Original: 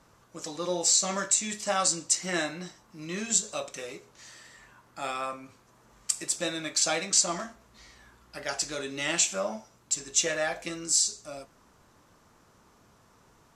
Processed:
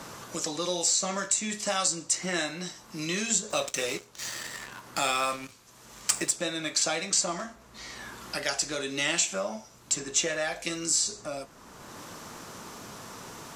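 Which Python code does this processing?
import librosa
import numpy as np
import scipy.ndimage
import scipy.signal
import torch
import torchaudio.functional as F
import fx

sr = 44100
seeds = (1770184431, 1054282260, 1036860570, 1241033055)

y = fx.leveller(x, sr, passes=2, at=(3.5, 6.31))
y = fx.band_squash(y, sr, depth_pct=70)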